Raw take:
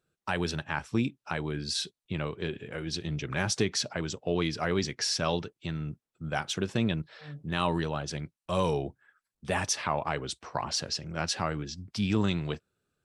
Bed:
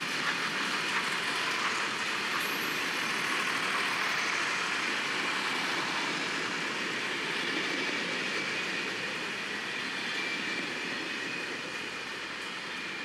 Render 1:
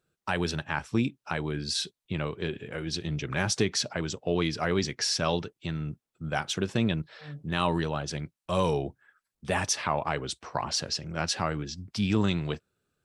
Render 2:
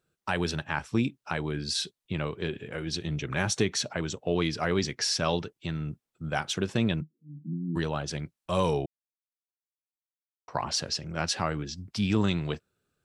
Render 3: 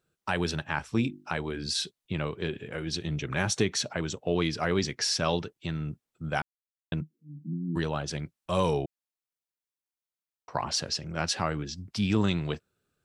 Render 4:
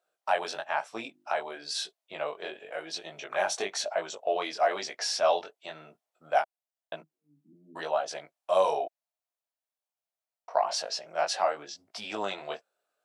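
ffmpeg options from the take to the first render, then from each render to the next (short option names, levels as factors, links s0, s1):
-af "volume=1.19"
-filter_complex "[0:a]asettb=1/sr,asplit=3[s0][s1][s2];[s0]atrim=end=2.964[s3];[s1]atrim=start=2.96:end=4.32,asetpts=PTS-STARTPTS,afade=t=in:d=0.004:c=qsin,afade=t=out:st=1.356:d=0.004:c=qsin,bandreject=f=4900:w=7.8[s4];[s2]atrim=start=4.316[s5];[s3][s4]acrossfade=d=0.004:c1=hsin:c2=qsin[s6];[s6][s5]acrossfade=d=0.004:c1=qsin:c2=hsin,asplit=3[s7][s8][s9];[s7]afade=t=out:st=7:d=0.02[s10];[s8]asuperpass=centerf=220:order=12:qfactor=1.2,afade=t=in:st=7:d=0.02,afade=t=out:st=7.75:d=0.02[s11];[s9]afade=t=in:st=7.75:d=0.02[s12];[s10][s11][s12]amix=inputs=3:normalize=0,asplit=3[s13][s14][s15];[s13]atrim=end=8.86,asetpts=PTS-STARTPTS,afade=t=out:st=8.856:d=0.004:c=hsin[s16];[s14]atrim=start=8.86:end=10.48,asetpts=PTS-STARTPTS,volume=0[s17];[s15]atrim=start=10.48,asetpts=PTS-STARTPTS,afade=t=in:d=0.004:c=hsin[s18];[s16][s17][s18]concat=n=3:v=0:a=1"
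-filter_complex "[0:a]asettb=1/sr,asplit=3[s0][s1][s2];[s0]atrim=end=0.834[s3];[s1]atrim=start=0.83:end=1.67,asetpts=PTS-STARTPTS,afade=t=in:d=0.004:c=qsin,afade=t=out:st=0.836:d=0.004:c=qsin,bandreject=f=50:t=h:w=6,bandreject=f=100:t=h:w=6,bandreject=f=150:t=h:w=6,bandreject=f=200:t=h:w=6,bandreject=f=250:t=h:w=6,bandreject=f=300:t=h:w=6,bandreject=f=350:t=h:w=6[s4];[s2]atrim=start=1.666[s5];[s3][s4]acrossfade=d=0.004:c1=hsin:c2=qsin[s6];[s6][s5]acrossfade=d=0.004:c1=qsin:c2=hsin,asplit=3[s7][s8][s9];[s7]atrim=end=6.42,asetpts=PTS-STARTPTS,afade=t=out:st=6.416:d=0.004:c=hsin[s10];[s8]atrim=start=6.42:end=6.92,asetpts=PTS-STARTPTS,volume=0[s11];[s9]atrim=start=6.92,asetpts=PTS-STARTPTS,afade=t=in:d=0.004:c=hsin[s12];[s10][s11][s12]concat=n=3:v=0:a=1"
-af "flanger=delay=18:depth=3.4:speed=1,highpass=f=660:t=q:w=4.9"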